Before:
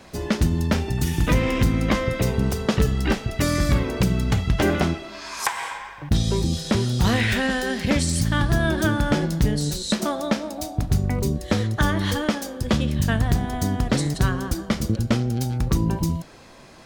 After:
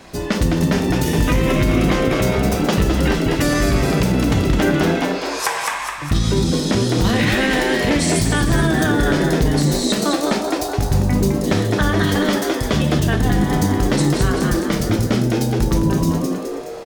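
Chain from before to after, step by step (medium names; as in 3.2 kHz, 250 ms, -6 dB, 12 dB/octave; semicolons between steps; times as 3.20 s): frequency-shifting echo 210 ms, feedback 52%, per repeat +99 Hz, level -5 dB; on a send at -5.5 dB: reverberation, pre-delay 3 ms; on the sum: peak limiter -11.5 dBFS, peak gain reduction 5.5 dB; trim +4 dB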